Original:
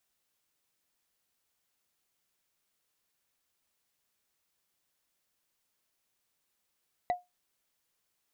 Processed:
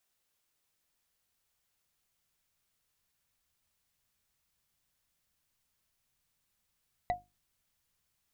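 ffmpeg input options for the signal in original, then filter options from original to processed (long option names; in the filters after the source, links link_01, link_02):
-f lavfi -i "aevalsrc='0.0794*pow(10,-3*t/0.19)*sin(2*PI*716*t)+0.0224*pow(10,-3*t/0.056)*sin(2*PI*1974*t)+0.00631*pow(10,-3*t/0.025)*sin(2*PI*3869.3*t)+0.00178*pow(10,-3*t/0.014)*sin(2*PI*6396*t)+0.000501*pow(10,-3*t/0.008)*sin(2*PI*9551.4*t)':duration=0.45:sample_rate=44100"
-af "bandreject=frequency=50:width_type=h:width=6,bandreject=frequency=100:width_type=h:width=6,bandreject=frequency=150:width_type=h:width=6,bandreject=frequency=200:width_type=h:width=6,bandreject=frequency=250:width_type=h:width=6,bandreject=frequency=300:width_type=h:width=6,bandreject=frequency=350:width_type=h:width=6,asubboost=boost=4.5:cutoff=170"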